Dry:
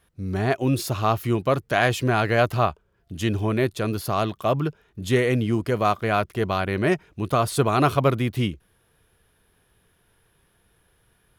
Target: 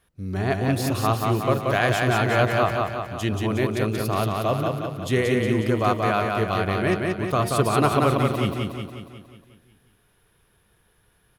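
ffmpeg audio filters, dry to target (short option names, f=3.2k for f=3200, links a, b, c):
-filter_complex "[0:a]bandreject=f=77.33:t=h:w=4,bandreject=f=154.66:t=h:w=4,bandreject=f=231.99:t=h:w=4,bandreject=f=309.32:t=h:w=4,bandreject=f=386.65:t=h:w=4,bandreject=f=463.98:t=h:w=4,bandreject=f=541.31:t=h:w=4,bandreject=f=618.64:t=h:w=4,bandreject=f=695.97:t=h:w=4,bandreject=f=773.3:t=h:w=4,bandreject=f=850.63:t=h:w=4,bandreject=f=927.96:t=h:w=4,asplit=2[a][b];[b]aecho=0:1:181|362|543|724|905|1086|1267|1448:0.708|0.389|0.214|0.118|0.0648|0.0356|0.0196|0.0108[c];[a][c]amix=inputs=2:normalize=0,volume=-1.5dB"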